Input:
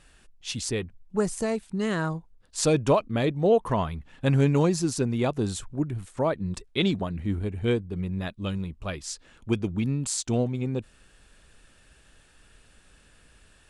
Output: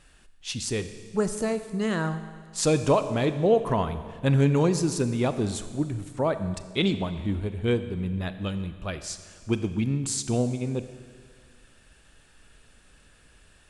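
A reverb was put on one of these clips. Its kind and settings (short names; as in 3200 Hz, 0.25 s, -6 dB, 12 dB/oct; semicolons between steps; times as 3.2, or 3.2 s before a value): Schroeder reverb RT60 1.8 s, combs from 29 ms, DRR 10.5 dB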